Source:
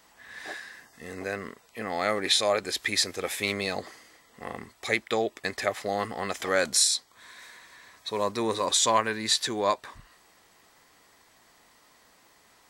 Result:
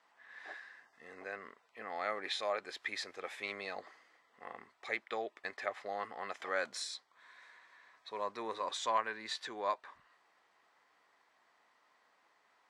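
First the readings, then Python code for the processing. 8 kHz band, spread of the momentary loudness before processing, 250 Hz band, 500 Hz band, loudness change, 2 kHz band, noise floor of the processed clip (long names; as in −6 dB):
−22.5 dB, 18 LU, −17.5 dB, −12.0 dB, −13.0 dB, −9.5 dB, −72 dBFS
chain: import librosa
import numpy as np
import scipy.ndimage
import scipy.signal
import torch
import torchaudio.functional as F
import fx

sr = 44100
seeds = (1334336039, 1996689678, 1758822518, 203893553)

y = scipy.signal.sosfilt(scipy.signal.butter(2, 1200.0, 'lowpass', fs=sr, output='sos'), x)
y = np.diff(y, prepend=0.0)
y = F.gain(torch.from_numpy(y), 10.5).numpy()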